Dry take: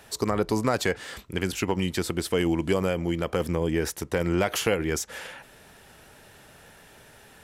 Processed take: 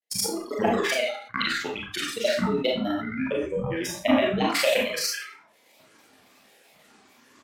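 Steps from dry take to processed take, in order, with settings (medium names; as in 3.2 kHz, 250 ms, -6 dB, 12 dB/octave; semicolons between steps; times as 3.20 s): tracing distortion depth 0.038 ms; gate -39 dBFS, range -13 dB; high-pass 360 Hz 12 dB/octave; spectral noise reduction 26 dB; high-order bell 1 kHz -11.5 dB 1.1 oct; reverse; upward compressor, threshold -32 dBFS; reverse; transient shaper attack +7 dB, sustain -8 dB; granulator, spray 100 ms, pitch spread up and down by 12 st; pitch shift -5.5 st; Schroeder reverb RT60 0.36 s, combs from 27 ms, DRR -2 dB; decay stretcher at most 100 dB/s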